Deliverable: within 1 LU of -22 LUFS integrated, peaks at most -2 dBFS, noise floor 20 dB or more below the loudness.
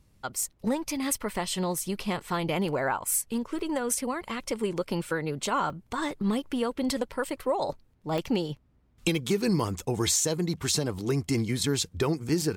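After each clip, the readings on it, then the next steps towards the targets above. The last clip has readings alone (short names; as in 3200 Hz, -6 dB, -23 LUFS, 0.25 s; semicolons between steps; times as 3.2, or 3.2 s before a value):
dropouts 7; longest dropout 1.1 ms; loudness -29.0 LUFS; peak -12.0 dBFS; loudness target -22.0 LUFS
-> interpolate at 0.43/3.06/3.59/5.7/8.18/9.15/10.71, 1.1 ms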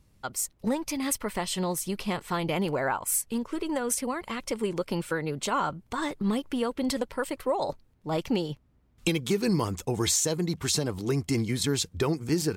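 dropouts 0; loudness -29.0 LUFS; peak -12.0 dBFS; loudness target -22.0 LUFS
-> gain +7 dB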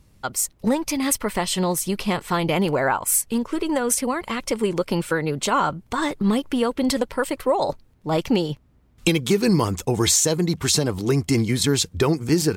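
loudness -22.0 LUFS; peak -5.0 dBFS; noise floor -57 dBFS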